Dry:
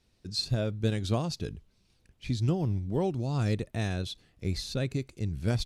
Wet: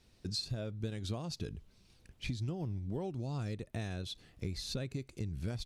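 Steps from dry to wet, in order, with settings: compression 6:1, threshold -39 dBFS, peak gain reduction 16.5 dB; trim +3.5 dB

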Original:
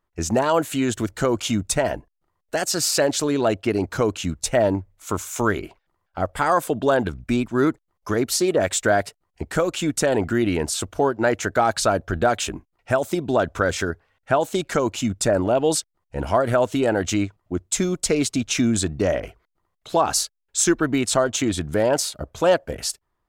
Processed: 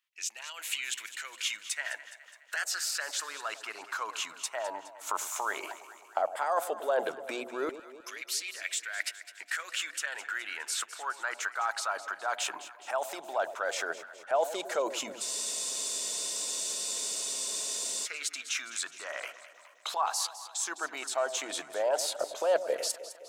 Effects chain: recorder AGC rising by 25 dB/s; high-pass 98 Hz; bass shelf 270 Hz -9 dB; hum notches 60/120/180/240/300 Hz; reverse; compression 6:1, threshold -31 dBFS, peak gain reduction 15.5 dB; reverse; LFO high-pass saw down 0.13 Hz 490–2700 Hz; on a send: echo whose repeats swap between lows and highs 104 ms, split 850 Hz, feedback 74%, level -11.5 dB; on the sum: spectral freeze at 15.23 s, 2.83 s

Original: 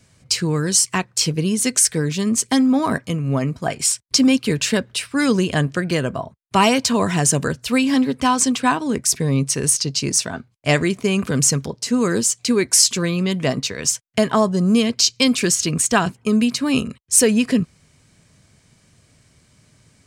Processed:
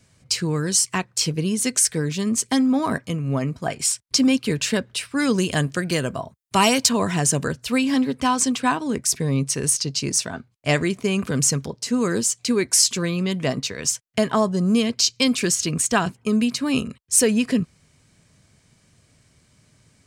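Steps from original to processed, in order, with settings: 5.38–6.89 s: treble shelf 4.9 kHz +10 dB; trim -3 dB

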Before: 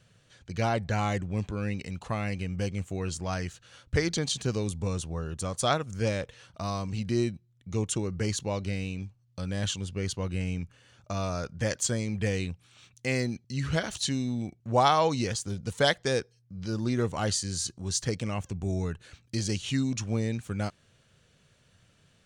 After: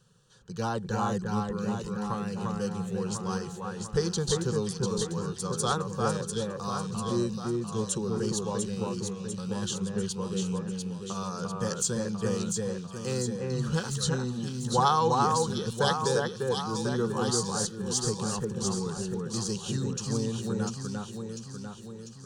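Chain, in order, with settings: static phaser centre 430 Hz, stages 8; echo whose repeats swap between lows and highs 348 ms, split 2.3 kHz, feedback 74%, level -2 dB; trim +1.5 dB

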